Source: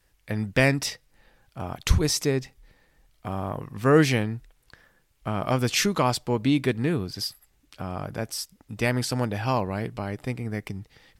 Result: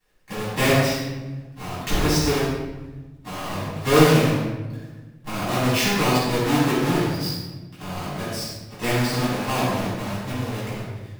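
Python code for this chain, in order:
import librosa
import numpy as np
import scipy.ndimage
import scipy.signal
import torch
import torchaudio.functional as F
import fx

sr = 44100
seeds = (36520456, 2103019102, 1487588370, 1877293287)

y = fx.halfwave_hold(x, sr)
y = fx.low_shelf(y, sr, hz=160.0, db=-11.0)
y = fx.room_shoebox(y, sr, seeds[0], volume_m3=740.0, walls='mixed', distance_m=9.4)
y = y * 10.0 ** (-15.5 / 20.0)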